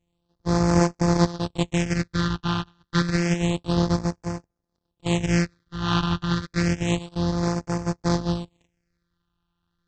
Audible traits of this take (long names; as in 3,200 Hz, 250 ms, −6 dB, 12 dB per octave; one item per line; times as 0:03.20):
a buzz of ramps at a fixed pitch in blocks of 256 samples
phaser sweep stages 6, 0.29 Hz, lowest notch 560–3,200 Hz
AAC